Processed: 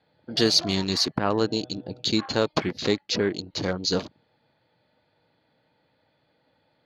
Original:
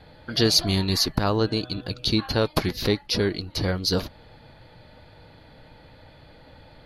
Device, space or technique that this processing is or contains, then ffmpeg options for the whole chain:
over-cleaned archive recording: -af "highpass=160,lowpass=7000,afwtdn=0.0141"

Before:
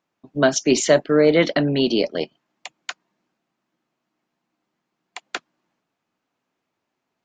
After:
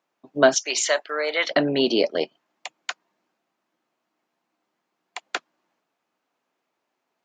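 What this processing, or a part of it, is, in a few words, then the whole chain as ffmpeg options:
filter by subtraction: -filter_complex "[0:a]asplit=2[link_01][link_02];[link_02]lowpass=580,volume=-1[link_03];[link_01][link_03]amix=inputs=2:normalize=0,asettb=1/sr,asplit=3[link_04][link_05][link_06];[link_04]atrim=end=0.544[link_07];[link_05]atrim=start=0.54:end=1.51,asetpts=PTS-STARTPTS,afade=type=in:duration=0.004:curve=qsin,afade=type=out:start_time=0.966:duration=0.004:curve=qsin,highpass=1000[link_08];[link_06]atrim=start=1.506[link_09];[link_07][link_08]acrossfade=duration=0.004:curve1=hsin:curve2=qsin[link_10];[link_10][link_09]acrossfade=duration=0.004:curve1=qsin:curve2=hsin"

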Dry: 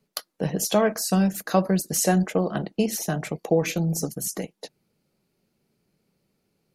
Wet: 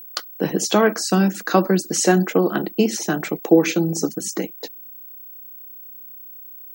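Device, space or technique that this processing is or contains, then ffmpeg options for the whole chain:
old television with a line whistle: -af "highpass=frequency=190:width=0.5412,highpass=frequency=190:width=1.3066,equalizer=frequency=330:width_type=q:width=4:gain=8,equalizer=frequency=620:width_type=q:width=4:gain=-6,equalizer=frequency=1400:width_type=q:width=4:gain=5,lowpass=frequency=7800:width=0.5412,lowpass=frequency=7800:width=1.3066,aeval=exprs='val(0)+0.00794*sin(2*PI*15734*n/s)':channel_layout=same,volume=5.5dB"

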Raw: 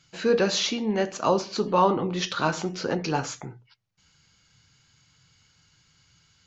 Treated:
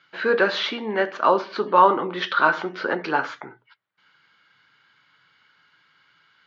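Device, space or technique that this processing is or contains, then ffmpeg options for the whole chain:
phone earpiece: -af "highpass=470,equalizer=frequency=490:width_type=q:width=4:gain=-5,equalizer=frequency=740:width_type=q:width=4:gain=-6,equalizer=frequency=1500:width_type=q:width=4:gain=4,equalizer=frequency=2600:width_type=q:width=4:gain=-8,lowpass=frequency=3100:width=0.5412,lowpass=frequency=3100:width=1.3066,volume=8.5dB"

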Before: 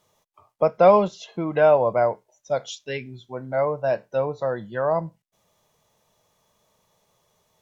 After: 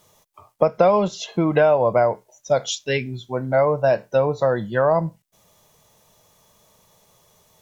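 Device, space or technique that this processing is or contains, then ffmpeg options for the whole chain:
ASMR close-microphone chain: -af "lowshelf=frequency=190:gain=3.5,acompressor=threshold=-20dB:ratio=6,highshelf=frequency=6200:gain=7,volume=7dB"

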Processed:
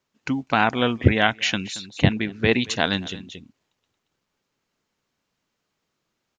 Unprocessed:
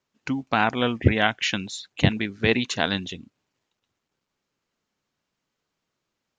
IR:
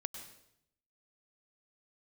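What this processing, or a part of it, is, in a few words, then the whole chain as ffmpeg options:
ducked delay: -filter_complex "[0:a]asplit=3[link_01][link_02][link_03];[link_02]adelay=227,volume=-5.5dB[link_04];[link_03]apad=whole_len=291453[link_05];[link_04][link_05]sidechaincompress=threshold=-41dB:ratio=10:attack=5.4:release=191[link_06];[link_01][link_06]amix=inputs=2:normalize=0,asettb=1/sr,asplit=3[link_07][link_08][link_09];[link_07]atrim=end=1.904[link_10];[link_08]atrim=start=1.9:end=2.52,asetpts=PTS-STARTPTS,afade=type=in:duration=0.004:curve=qsin,afade=type=out:start_time=0.616:duration=0.004:curve=qsin,highshelf=frequency=4800:gain=-8[link_11];[link_09]atrim=start=2.516[link_12];[link_10][link_11]acrossfade=duration=0.004:curve1=hsin:curve2=qsin[link_13];[link_13][link_12]acrossfade=duration=0.004:curve1=qsin:curve2=hsin,volume=2dB"

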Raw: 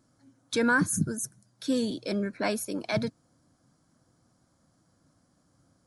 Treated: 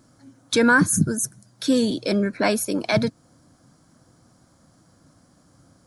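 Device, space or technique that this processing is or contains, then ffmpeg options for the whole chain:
parallel compression: -filter_complex "[0:a]asplit=2[link_01][link_02];[link_02]acompressor=threshold=-36dB:ratio=6,volume=-4.5dB[link_03];[link_01][link_03]amix=inputs=2:normalize=0,volume=6.5dB"

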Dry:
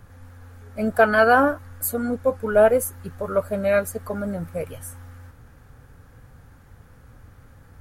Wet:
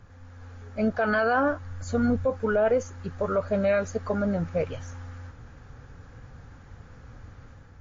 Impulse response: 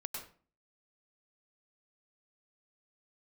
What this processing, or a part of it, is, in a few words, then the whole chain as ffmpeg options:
low-bitrate web radio: -filter_complex "[0:a]asettb=1/sr,asplit=3[link_01][link_02][link_03];[link_01]atrim=end=1.484[link_04];[link_02]atrim=start=1.48:end=2.25,asetpts=PTS-STARTPTS,afade=type=in:duration=0.004:curve=qsin,afade=type=out:start_time=0.766:duration=0.004:curve=qsin,asubboost=boost=11:cutoff=190[link_05];[link_03]atrim=start=2.246[link_06];[link_04][link_05]acrossfade=duration=0.004:curve1=hsin:curve2=qsin[link_07];[link_07][link_06]acrossfade=duration=0.004:curve1=qsin:curve2=hsin,dynaudnorm=framelen=120:gausssize=7:maxgain=5.5dB,alimiter=limit=-12dB:level=0:latency=1:release=44,volume=-3dB" -ar 16000 -c:a libmp3lame -b:a 40k

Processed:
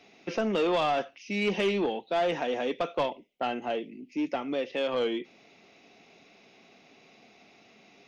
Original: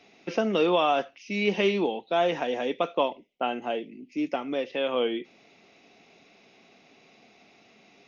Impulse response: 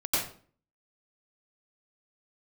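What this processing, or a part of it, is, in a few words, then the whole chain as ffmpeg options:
saturation between pre-emphasis and de-emphasis: -af "highshelf=frequency=5300:gain=6.5,asoftclip=type=tanh:threshold=-20.5dB,highshelf=frequency=5300:gain=-6.5"

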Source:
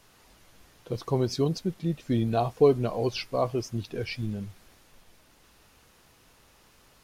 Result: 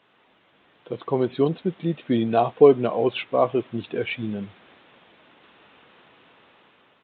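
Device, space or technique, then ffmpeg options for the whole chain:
Bluetooth headset: -af "highpass=210,dynaudnorm=framelen=460:gausssize=5:maxgain=8.5dB,aresample=8000,aresample=44100" -ar 16000 -c:a sbc -b:a 64k

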